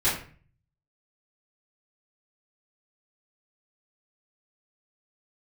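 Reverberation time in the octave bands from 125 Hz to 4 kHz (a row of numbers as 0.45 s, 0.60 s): 0.85 s, 0.55 s, 0.45 s, 0.40 s, 0.45 s, 0.35 s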